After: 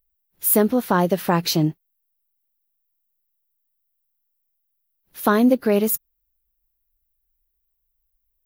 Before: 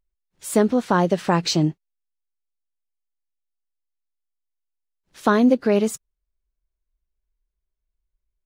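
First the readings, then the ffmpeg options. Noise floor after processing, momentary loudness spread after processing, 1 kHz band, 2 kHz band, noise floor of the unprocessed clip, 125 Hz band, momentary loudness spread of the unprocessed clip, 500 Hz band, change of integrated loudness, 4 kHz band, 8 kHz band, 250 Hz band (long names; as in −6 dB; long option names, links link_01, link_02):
−74 dBFS, 7 LU, 0.0 dB, 0.0 dB, −81 dBFS, 0.0 dB, 9 LU, 0.0 dB, +0.5 dB, 0.0 dB, +4.5 dB, 0.0 dB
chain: -af "aexciter=amount=13.6:drive=4.4:freq=11000"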